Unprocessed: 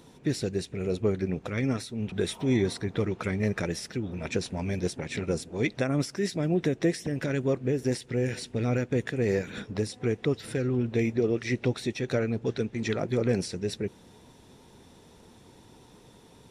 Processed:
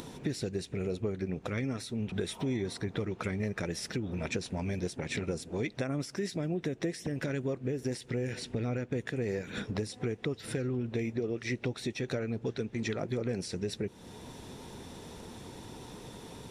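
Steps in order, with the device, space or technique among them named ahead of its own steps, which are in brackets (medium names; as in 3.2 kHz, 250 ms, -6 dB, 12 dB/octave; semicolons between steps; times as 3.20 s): upward and downward compression (upward compressor, threshold -46 dBFS; compression 4:1, threshold -38 dBFS, peak gain reduction 15 dB); 8.33–8.93 s: treble shelf 6 kHz -7 dB; trim +5.5 dB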